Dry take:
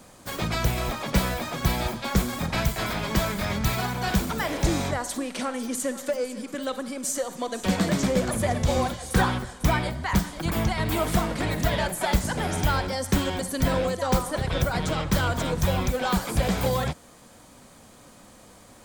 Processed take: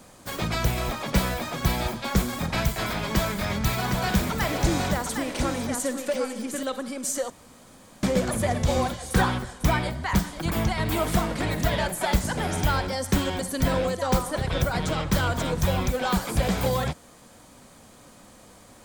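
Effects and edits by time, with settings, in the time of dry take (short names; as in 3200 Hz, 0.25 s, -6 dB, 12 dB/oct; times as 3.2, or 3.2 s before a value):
3.09–6.63 echo 0.762 s -5.5 dB
7.3–8.03 room tone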